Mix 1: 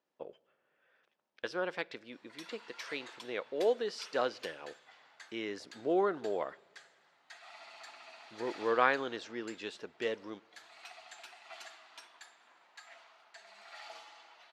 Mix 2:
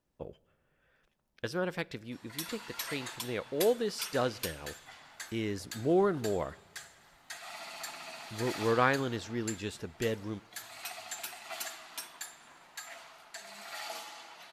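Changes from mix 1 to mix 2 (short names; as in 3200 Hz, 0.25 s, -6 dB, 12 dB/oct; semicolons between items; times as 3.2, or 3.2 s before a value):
background +7.0 dB; master: remove BPF 390–4700 Hz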